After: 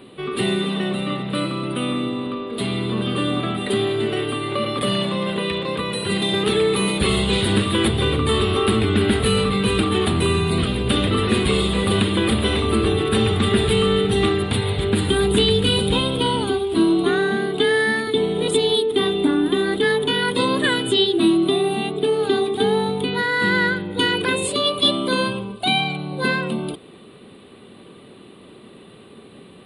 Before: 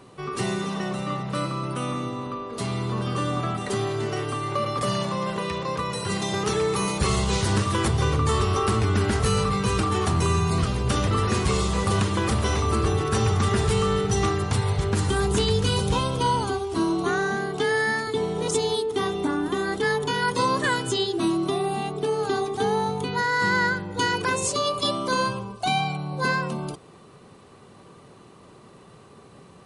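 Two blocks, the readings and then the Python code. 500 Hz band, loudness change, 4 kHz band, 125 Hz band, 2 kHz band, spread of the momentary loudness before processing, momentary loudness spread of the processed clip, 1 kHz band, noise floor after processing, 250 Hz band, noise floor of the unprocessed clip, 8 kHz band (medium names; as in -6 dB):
+6.0 dB, +4.5 dB, +9.0 dB, +1.0 dB, +4.0 dB, 6 LU, 6 LU, -0.5 dB, -45 dBFS, +7.0 dB, -50 dBFS, 0.0 dB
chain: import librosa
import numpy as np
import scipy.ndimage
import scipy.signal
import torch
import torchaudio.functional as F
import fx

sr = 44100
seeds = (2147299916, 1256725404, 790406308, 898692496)

y = fx.curve_eq(x, sr, hz=(150.0, 220.0, 390.0, 1000.0, 3700.0, 5900.0, 9000.0), db=(0, 9, 7, -2, 12, -20, 5))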